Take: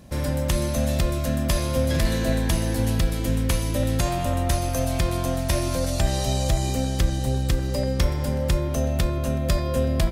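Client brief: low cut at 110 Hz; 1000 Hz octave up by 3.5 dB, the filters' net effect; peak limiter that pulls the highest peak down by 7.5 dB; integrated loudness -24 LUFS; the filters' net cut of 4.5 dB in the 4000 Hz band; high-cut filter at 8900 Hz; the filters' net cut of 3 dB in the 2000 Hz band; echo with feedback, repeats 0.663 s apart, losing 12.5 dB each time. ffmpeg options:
-af "highpass=110,lowpass=8.9k,equalizer=f=1k:t=o:g=6,equalizer=f=2k:t=o:g=-4.5,equalizer=f=4k:t=o:g=-4.5,alimiter=limit=-17.5dB:level=0:latency=1,aecho=1:1:663|1326|1989:0.237|0.0569|0.0137,volume=3.5dB"

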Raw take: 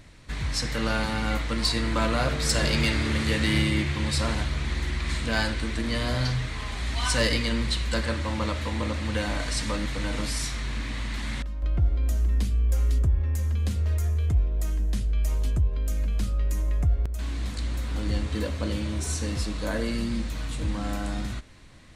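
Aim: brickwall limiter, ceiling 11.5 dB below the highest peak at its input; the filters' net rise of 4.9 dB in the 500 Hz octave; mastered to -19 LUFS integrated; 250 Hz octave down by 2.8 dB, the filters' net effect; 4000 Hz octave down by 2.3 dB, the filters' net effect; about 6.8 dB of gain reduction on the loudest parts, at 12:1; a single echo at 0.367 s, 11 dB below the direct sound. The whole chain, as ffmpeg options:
-af "equalizer=f=250:t=o:g=-5.5,equalizer=f=500:t=o:g=7,equalizer=f=4k:t=o:g=-3,acompressor=threshold=-24dB:ratio=12,alimiter=level_in=3.5dB:limit=-24dB:level=0:latency=1,volume=-3.5dB,aecho=1:1:367:0.282,volume=16.5dB"

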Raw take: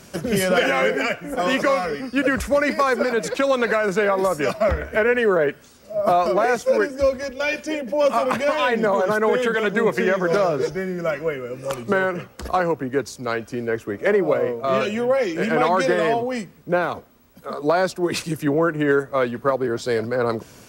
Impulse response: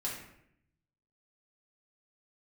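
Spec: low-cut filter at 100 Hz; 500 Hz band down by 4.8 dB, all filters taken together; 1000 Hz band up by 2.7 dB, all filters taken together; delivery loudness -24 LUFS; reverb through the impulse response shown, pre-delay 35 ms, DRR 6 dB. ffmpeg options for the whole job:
-filter_complex "[0:a]highpass=100,equalizer=f=500:t=o:g=-7.5,equalizer=f=1k:t=o:g=6,asplit=2[a][b];[1:a]atrim=start_sample=2205,adelay=35[c];[b][c]afir=irnorm=-1:irlink=0,volume=-8.5dB[d];[a][d]amix=inputs=2:normalize=0,volume=-2.5dB"

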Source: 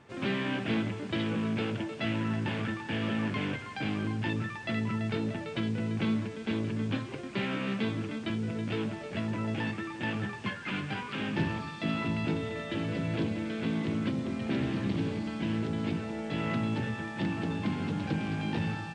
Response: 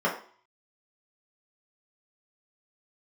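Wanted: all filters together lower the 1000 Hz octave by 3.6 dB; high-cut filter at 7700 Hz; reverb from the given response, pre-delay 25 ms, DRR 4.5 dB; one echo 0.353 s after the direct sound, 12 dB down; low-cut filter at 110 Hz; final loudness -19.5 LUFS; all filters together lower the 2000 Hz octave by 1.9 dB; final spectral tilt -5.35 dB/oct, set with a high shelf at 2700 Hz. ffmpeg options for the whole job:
-filter_complex "[0:a]highpass=110,lowpass=7.7k,equalizer=f=1k:t=o:g=-4.5,equalizer=f=2k:t=o:g=-3,highshelf=f=2.7k:g=4,aecho=1:1:353:0.251,asplit=2[a][b];[1:a]atrim=start_sample=2205,adelay=25[c];[b][c]afir=irnorm=-1:irlink=0,volume=-18dB[d];[a][d]amix=inputs=2:normalize=0,volume=12.5dB"

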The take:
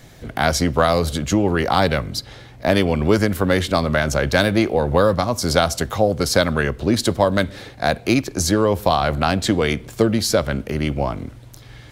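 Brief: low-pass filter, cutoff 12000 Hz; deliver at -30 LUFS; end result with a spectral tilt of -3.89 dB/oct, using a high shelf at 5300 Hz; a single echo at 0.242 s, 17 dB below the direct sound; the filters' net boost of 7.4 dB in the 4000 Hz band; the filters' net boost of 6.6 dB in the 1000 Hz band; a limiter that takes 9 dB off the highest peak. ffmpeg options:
-af "lowpass=12k,equalizer=f=1k:t=o:g=8.5,equalizer=f=4k:t=o:g=6.5,highshelf=f=5.3k:g=4.5,alimiter=limit=-5.5dB:level=0:latency=1,aecho=1:1:242:0.141,volume=-11.5dB"

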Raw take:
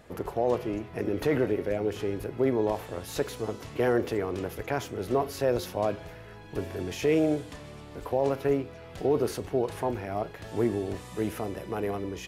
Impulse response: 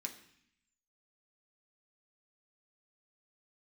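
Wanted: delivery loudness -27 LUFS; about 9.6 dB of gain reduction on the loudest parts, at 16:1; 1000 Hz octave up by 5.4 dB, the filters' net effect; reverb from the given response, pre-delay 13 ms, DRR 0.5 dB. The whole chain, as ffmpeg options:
-filter_complex "[0:a]equalizer=f=1k:t=o:g=7.5,acompressor=threshold=-28dB:ratio=16,asplit=2[a][b];[1:a]atrim=start_sample=2205,adelay=13[c];[b][c]afir=irnorm=-1:irlink=0,volume=2dB[d];[a][d]amix=inputs=2:normalize=0,volume=5.5dB"

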